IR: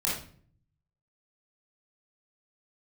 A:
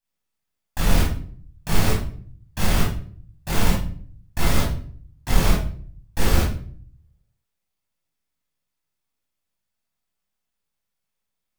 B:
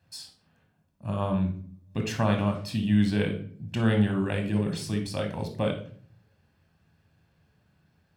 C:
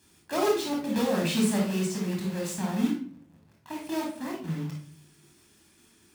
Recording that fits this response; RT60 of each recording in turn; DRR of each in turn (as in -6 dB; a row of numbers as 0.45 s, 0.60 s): A; 0.50 s, 0.50 s, 0.50 s; -6.0 dB, 4.5 dB, -2.0 dB